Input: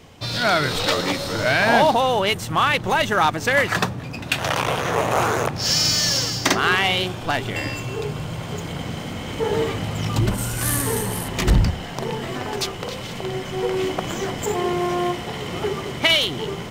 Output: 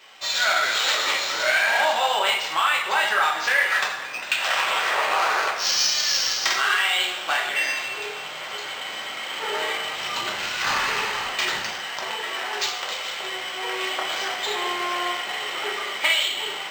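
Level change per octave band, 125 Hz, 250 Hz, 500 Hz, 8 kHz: −28.5, −17.0, −8.5, −1.5 decibels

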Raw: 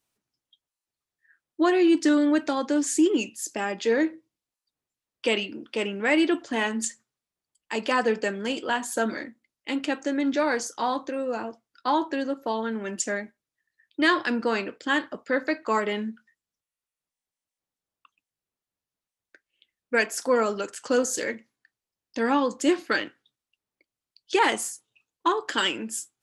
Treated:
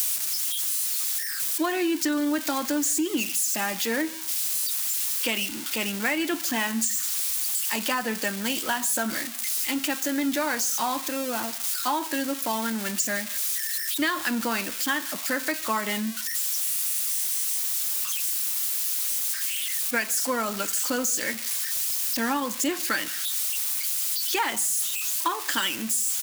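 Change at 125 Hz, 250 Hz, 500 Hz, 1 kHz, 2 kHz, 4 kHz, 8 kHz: can't be measured, −3.0 dB, −6.5 dB, −1.5 dB, 0.0 dB, +4.5 dB, +11.0 dB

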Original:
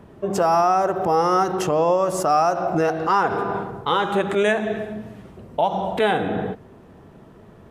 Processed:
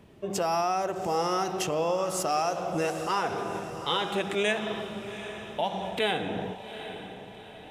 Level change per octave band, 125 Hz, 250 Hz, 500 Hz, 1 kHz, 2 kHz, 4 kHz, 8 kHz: −8.0, −8.5, −8.5, −9.5, −6.0, +0.5, −0.5 decibels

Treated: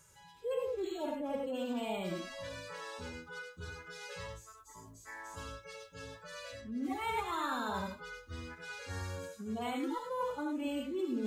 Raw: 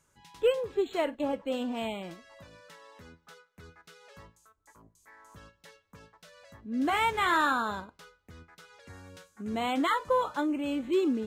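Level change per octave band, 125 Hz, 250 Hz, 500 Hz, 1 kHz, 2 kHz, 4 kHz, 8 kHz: +3.0, −6.0, −7.0, −8.5, −8.5, −6.5, −1.0 decibels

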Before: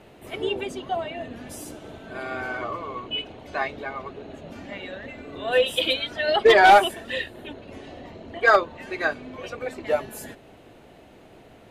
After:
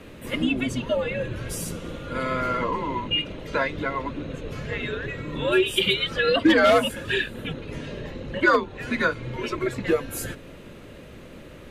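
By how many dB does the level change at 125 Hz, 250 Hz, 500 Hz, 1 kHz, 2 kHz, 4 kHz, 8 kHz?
+11.0, +9.5, −1.0, −5.5, −1.0, +1.0, +4.5 decibels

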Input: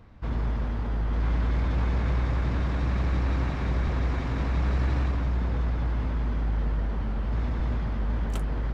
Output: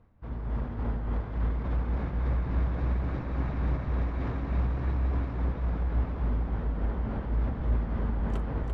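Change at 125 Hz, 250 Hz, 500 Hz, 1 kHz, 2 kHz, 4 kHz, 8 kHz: −3.0 dB, −2.0 dB, −2.0 dB, −3.5 dB, −6.5 dB, −11.0 dB, can't be measured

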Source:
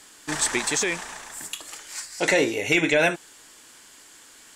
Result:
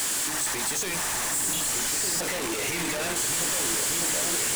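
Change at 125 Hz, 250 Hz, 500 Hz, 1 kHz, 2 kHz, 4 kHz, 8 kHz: −2.0, −5.5, −8.0, 0.0, −5.5, +2.5, +6.5 decibels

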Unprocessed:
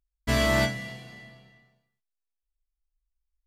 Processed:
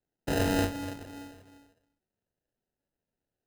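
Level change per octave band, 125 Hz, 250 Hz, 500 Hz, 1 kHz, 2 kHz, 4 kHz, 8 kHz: −4.0, 0.0, −4.0, −3.0, −9.0, −7.5, −3.5 decibels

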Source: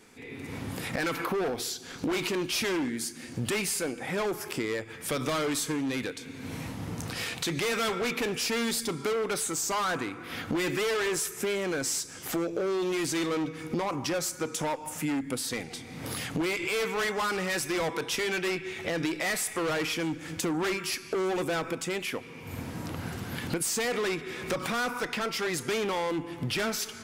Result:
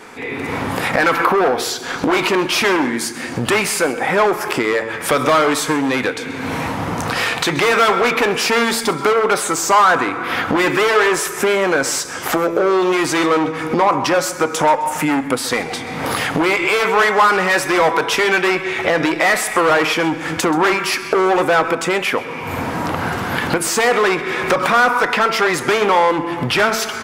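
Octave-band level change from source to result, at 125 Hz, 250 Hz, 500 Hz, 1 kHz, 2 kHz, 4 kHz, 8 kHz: +9.0, +11.5, +14.0, +19.0, +16.0, +11.5, +9.0 decibels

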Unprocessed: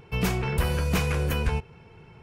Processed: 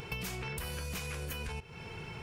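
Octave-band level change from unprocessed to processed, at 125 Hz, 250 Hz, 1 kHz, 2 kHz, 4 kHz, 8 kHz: −14.5, −15.0, −12.0, −8.5, −7.0, −5.5 decibels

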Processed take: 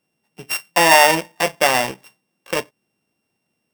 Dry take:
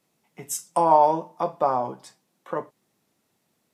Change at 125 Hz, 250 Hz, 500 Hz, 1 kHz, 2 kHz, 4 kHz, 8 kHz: +5.0 dB, +5.5 dB, +4.0 dB, +3.0 dB, +29.0 dB, can't be measured, +11.5 dB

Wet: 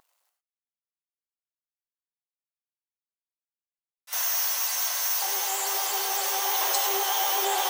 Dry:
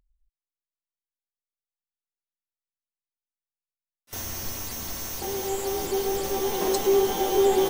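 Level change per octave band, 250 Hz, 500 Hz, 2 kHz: below −15 dB, −14.0 dB, +6.0 dB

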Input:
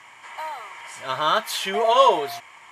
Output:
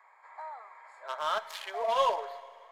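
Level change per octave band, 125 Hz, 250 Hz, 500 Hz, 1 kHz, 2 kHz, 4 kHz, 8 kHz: below −20 dB, below −20 dB, −11.0 dB, −10.0 dB, −11.5 dB, −13.0 dB, −15.5 dB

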